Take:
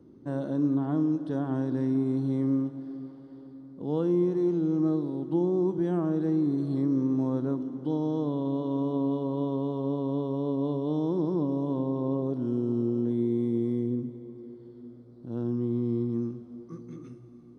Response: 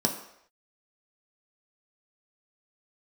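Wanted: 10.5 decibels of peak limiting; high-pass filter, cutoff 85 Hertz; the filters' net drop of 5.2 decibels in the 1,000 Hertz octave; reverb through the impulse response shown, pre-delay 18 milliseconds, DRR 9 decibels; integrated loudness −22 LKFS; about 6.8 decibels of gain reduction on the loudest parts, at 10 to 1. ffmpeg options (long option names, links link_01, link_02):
-filter_complex "[0:a]highpass=85,equalizer=frequency=1000:width_type=o:gain=-6.5,acompressor=threshold=-29dB:ratio=10,alimiter=level_in=9dB:limit=-24dB:level=0:latency=1,volume=-9dB,asplit=2[link_01][link_02];[1:a]atrim=start_sample=2205,adelay=18[link_03];[link_02][link_03]afir=irnorm=-1:irlink=0,volume=-18.5dB[link_04];[link_01][link_04]amix=inputs=2:normalize=0,volume=17dB"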